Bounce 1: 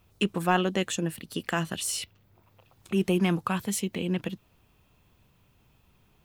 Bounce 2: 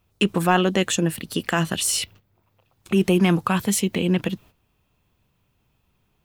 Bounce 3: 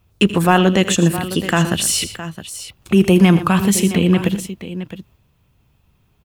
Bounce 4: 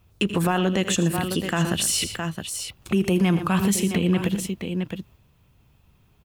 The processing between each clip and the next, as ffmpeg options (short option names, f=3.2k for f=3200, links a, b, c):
-filter_complex "[0:a]agate=range=-13dB:threshold=-53dB:ratio=16:detection=peak,asplit=2[a][b];[b]alimiter=limit=-21.5dB:level=0:latency=1,volume=-0.5dB[c];[a][c]amix=inputs=2:normalize=0,volume=3dB"
-filter_complex "[0:a]equalizer=f=70:t=o:w=2.3:g=6.5,asplit=2[a][b];[b]aecho=0:1:81|119|664:0.158|0.2|0.224[c];[a][c]amix=inputs=2:normalize=0,volume=4.5dB"
-af "alimiter=limit=-12.5dB:level=0:latency=1:release=198"